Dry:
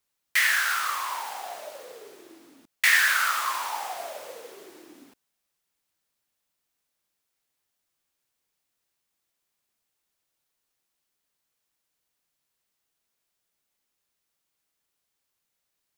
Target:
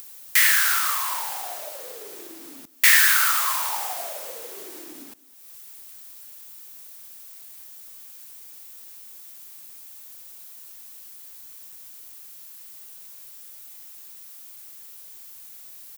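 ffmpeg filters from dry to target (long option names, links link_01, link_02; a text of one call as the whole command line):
ffmpeg -i in.wav -filter_complex "[0:a]acompressor=mode=upward:threshold=-36dB:ratio=2.5,aemphasis=mode=production:type=50kf,asplit=2[link_01][link_02];[link_02]adelay=204.1,volume=-20dB,highshelf=frequency=4000:gain=-4.59[link_03];[link_01][link_03]amix=inputs=2:normalize=0" out.wav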